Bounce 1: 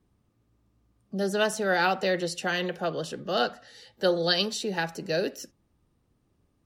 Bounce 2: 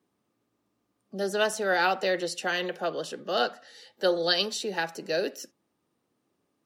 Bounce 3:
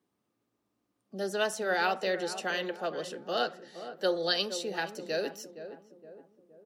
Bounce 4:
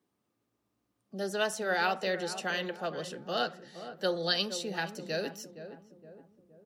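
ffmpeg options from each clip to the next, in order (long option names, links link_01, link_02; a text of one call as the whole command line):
ffmpeg -i in.wav -af "highpass=270" out.wav
ffmpeg -i in.wav -filter_complex "[0:a]asplit=2[link_01][link_02];[link_02]adelay=467,lowpass=frequency=900:poles=1,volume=-10dB,asplit=2[link_03][link_04];[link_04]adelay=467,lowpass=frequency=900:poles=1,volume=0.53,asplit=2[link_05][link_06];[link_06]adelay=467,lowpass=frequency=900:poles=1,volume=0.53,asplit=2[link_07][link_08];[link_08]adelay=467,lowpass=frequency=900:poles=1,volume=0.53,asplit=2[link_09][link_10];[link_10]adelay=467,lowpass=frequency=900:poles=1,volume=0.53,asplit=2[link_11][link_12];[link_12]adelay=467,lowpass=frequency=900:poles=1,volume=0.53[link_13];[link_01][link_03][link_05][link_07][link_09][link_11][link_13]amix=inputs=7:normalize=0,volume=-4dB" out.wav
ffmpeg -i in.wav -af "asubboost=boost=5:cutoff=160" out.wav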